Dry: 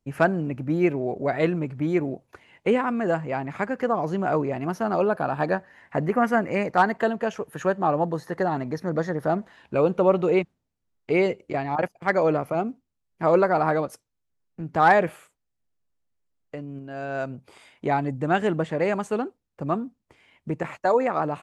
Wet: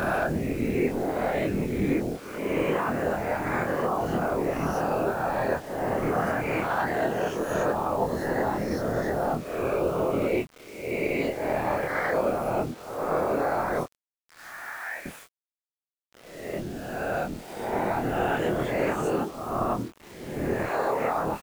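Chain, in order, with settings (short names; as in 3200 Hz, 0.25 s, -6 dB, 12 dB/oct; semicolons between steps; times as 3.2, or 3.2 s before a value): spectral swells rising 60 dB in 0.96 s; limiter -11.5 dBFS, peak gain reduction 8.5 dB; compressor 3:1, threshold -26 dBFS, peak gain reduction 8 dB; 13.83–15.06 band-pass 2100 Hz, Q 3.2; whisperiser; bit-crush 8-bit; doubler 25 ms -4 dB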